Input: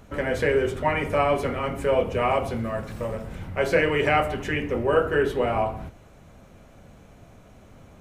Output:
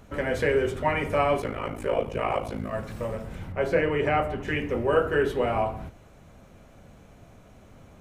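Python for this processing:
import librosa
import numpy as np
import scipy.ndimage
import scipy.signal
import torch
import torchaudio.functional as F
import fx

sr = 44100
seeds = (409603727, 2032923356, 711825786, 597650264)

y = fx.ring_mod(x, sr, carrier_hz=27.0, at=(1.4, 2.71), fade=0.02)
y = fx.high_shelf(y, sr, hz=2100.0, db=-9.5, at=(3.52, 4.48))
y = F.gain(torch.from_numpy(y), -1.5).numpy()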